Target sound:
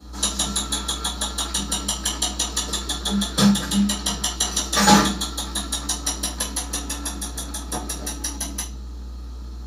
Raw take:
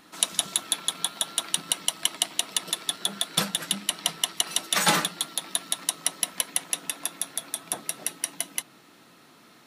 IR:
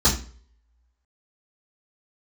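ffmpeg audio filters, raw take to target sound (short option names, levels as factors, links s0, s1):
-filter_complex "[0:a]aeval=exprs='val(0)+0.000891*(sin(2*PI*60*n/s)+sin(2*PI*2*60*n/s)/2+sin(2*PI*3*60*n/s)/3+sin(2*PI*4*60*n/s)/4+sin(2*PI*5*60*n/s)/5)':c=same[s0];[1:a]atrim=start_sample=2205[s1];[s0][s1]afir=irnorm=-1:irlink=0,acrossover=split=2300[s2][s3];[s2]adynamicsmooth=sensitivity=2.5:basefreq=940[s4];[s4][s3]amix=inputs=2:normalize=0,volume=0.299"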